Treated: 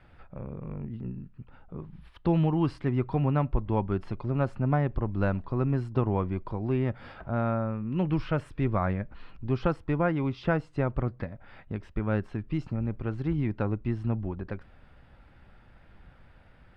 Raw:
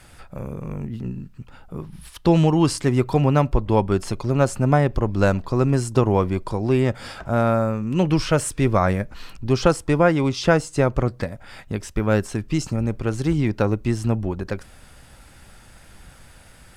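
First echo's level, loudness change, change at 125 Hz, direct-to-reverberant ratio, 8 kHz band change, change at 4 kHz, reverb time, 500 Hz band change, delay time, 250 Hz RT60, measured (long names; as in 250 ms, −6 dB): no echo audible, −8.5 dB, −7.0 dB, no reverb audible, below −30 dB, −17.0 dB, no reverb audible, −10.5 dB, no echo audible, no reverb audible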